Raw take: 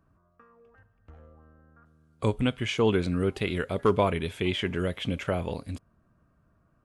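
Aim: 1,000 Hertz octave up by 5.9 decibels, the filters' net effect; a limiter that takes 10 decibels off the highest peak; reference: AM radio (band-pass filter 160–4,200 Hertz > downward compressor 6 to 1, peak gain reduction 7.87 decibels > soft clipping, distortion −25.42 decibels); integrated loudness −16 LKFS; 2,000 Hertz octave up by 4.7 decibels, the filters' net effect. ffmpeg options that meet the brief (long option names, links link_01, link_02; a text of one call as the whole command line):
ffmpeg -i in.wav -af "equalizer=frequency=1000:width_type=o:gain=6,equalizer=frequency=2000:width_type=o:gain=4.5,alimiter=limit=-18.5dB:level=0:latency=1,highpass=160,lowpass=4200,acompressor=threshold=-31dB:ratio=6,asoftclip=threshold=-20.5dB,volume=20.5dB" out.wav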